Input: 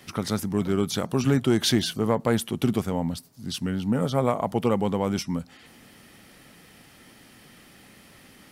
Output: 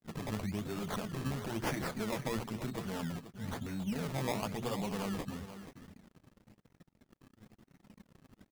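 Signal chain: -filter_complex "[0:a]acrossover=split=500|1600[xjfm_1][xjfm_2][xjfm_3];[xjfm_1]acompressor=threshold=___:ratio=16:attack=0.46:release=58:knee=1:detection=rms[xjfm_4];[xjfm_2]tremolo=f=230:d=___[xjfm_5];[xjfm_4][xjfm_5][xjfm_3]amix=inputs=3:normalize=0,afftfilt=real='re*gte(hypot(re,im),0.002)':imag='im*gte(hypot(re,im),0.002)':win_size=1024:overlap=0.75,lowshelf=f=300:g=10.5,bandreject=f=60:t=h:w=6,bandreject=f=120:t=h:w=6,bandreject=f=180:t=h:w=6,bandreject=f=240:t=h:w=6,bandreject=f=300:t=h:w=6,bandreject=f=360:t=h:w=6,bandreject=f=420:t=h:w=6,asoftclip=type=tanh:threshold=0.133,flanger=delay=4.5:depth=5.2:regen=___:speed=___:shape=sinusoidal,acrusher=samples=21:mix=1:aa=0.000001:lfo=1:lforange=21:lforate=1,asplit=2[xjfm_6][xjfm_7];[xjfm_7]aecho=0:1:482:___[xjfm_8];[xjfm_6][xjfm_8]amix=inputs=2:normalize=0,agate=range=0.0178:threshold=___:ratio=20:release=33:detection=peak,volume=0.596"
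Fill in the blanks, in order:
0.0251, 0.788, 14, 1, 0.251, 0.00224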